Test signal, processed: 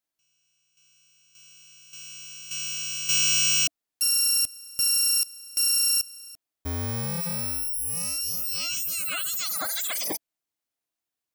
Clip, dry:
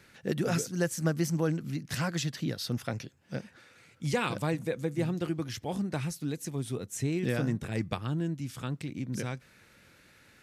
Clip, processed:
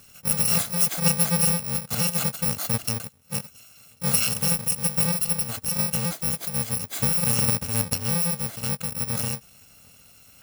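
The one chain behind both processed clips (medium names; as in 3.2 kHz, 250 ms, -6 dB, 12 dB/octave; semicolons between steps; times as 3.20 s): bit-reversed sample order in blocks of 128 samples; small resonant body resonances 300/670 Hz, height 7 dB; trim +7 dB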